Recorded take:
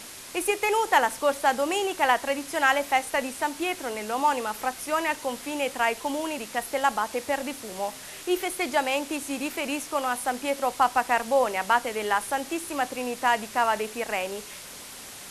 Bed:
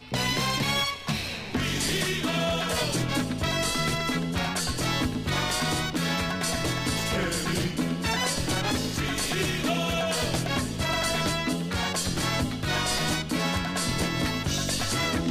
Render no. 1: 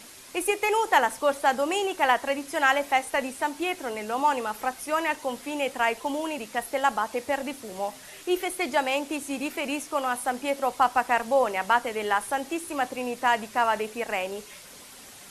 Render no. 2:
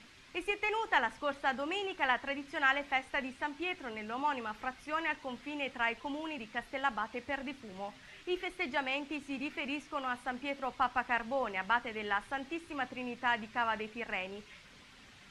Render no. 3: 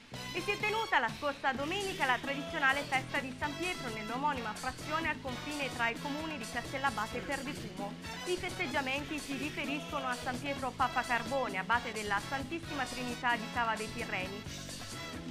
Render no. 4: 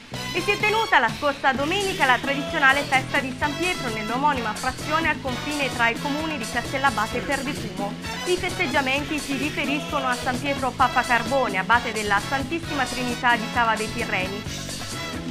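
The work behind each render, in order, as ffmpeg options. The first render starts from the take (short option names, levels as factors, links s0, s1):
-af "afftdn=nr=6:nf=-42"
-af "lowpass=2600,equalizer=f=580:t=o:w=2.5:g=-13"
-filter_complex "[1:a]volume=0.158[s0];[0:a][s0]amix=inputs=2:normalize=0"
-af "volume=3.98,alimiter=limit=0.708:level=0:latency=1"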